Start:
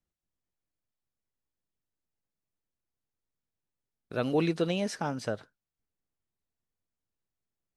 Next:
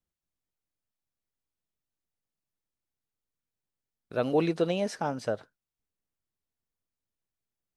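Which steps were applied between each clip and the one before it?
dynamic equaliser 630 Hz, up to +6 dB, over −41 dBFS, Q 0.81
level −2 dB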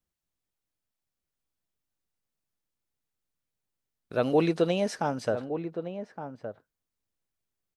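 slap from a distant wall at 200 metres, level −9 dB
level +2 dB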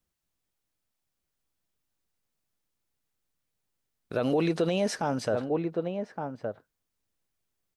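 brickwall limiter −21.5 dBFS, peak gain reduction 9 dB
level +4 dB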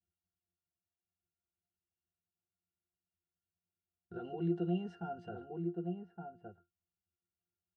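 resonances in every octave F, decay 0.19 s
level +1 dB

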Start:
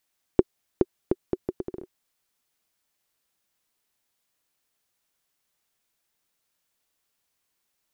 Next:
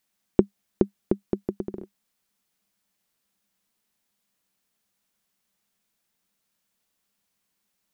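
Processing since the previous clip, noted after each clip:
parametric band 200 Hz +14.5 dB 0.32 octaves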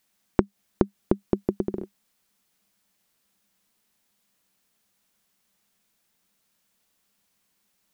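downward compressor 6 to 1, threshold −21 dBFS, peak gain reduction 10 dB
level +5 dB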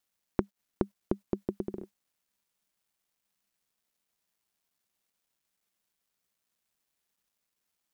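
bit reduction 11 bits
level −8 dB

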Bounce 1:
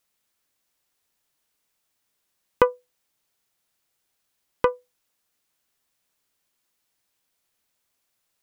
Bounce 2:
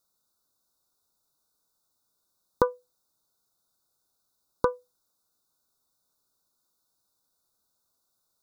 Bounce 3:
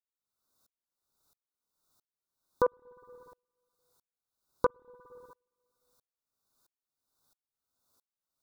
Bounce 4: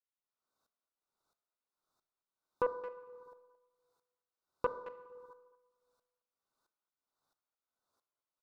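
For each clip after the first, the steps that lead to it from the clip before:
Chebyshev band-stop filter 1,500–3,600 Hz, order 5; downward compressor 2 to 1, threshold −21 dBFS, peak gain reduction 5.5 dB
brickwall limiter −17.5 dBFS, peak gain reduction 11 dB; convolution reverb RT60 1.4 s, pre-delay 51 ms, DRR 1 dB; tremolo with a ramp in dB swelling 1.5 Hz, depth 37 dB; level +6 dB
far-end echo of a speakerphone 220 ms, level −14 dB; four-comb reverb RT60 0.95 s, combs from 25 ms, DRR 11.5 dB; mid-hump overdrive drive 11 dB, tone 1,300 Hz, clips at −12.5 dBFS; level −6.5 dB

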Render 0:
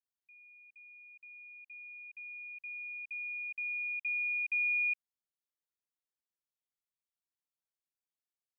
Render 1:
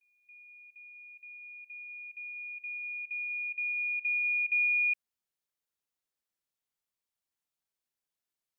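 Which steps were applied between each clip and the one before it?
echo ahead of the sound 277 ms −17.5 dB
level +3.5 dB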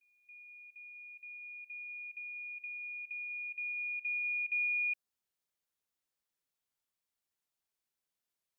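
dynamic equaliser 2,300 Hz, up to −6 dB, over −43 dBFS, Q 2.4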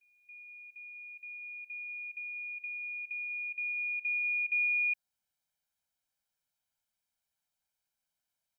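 comb filter 1.3 ms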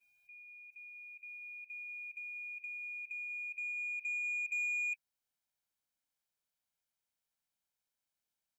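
spectral magnitudes quantised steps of 30 dB
soft clipping −28 dBFS, distortion −19 dB
level −3 dB

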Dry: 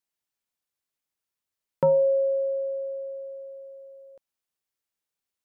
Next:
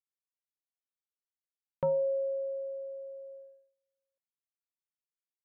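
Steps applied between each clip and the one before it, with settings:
noise gate −40 dBFS, range −33 dB
level −8.5 dB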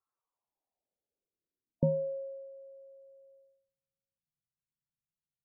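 low-pass filter sweep 1,200 Hz → 150 Hz, 0:00.18–0:02.51
spectral peaks only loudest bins 32
level +8.5 dB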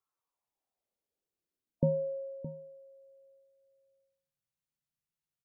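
single-tap delay 617 ms −13 dB

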